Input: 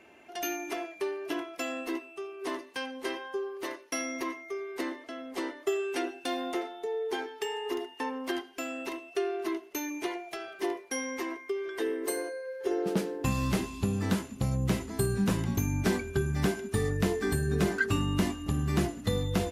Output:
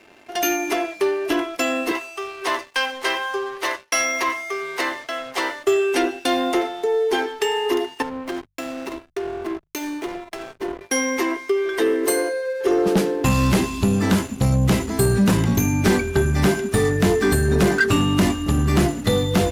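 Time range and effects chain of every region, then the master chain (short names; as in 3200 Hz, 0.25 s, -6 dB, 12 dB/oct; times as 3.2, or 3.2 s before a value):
1.91–5.64 HPF 700 Hz + high shelf 9900 Hz -9.5 dB + sample leveller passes 1
8.02–10.81 compressor 4:1, threshold -37 dBFS + backlash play -37.5 dBFS + three-band expander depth 70%
whole clip: notches 50/100/150 Hz; sample leveller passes 2; gain +5.5 dB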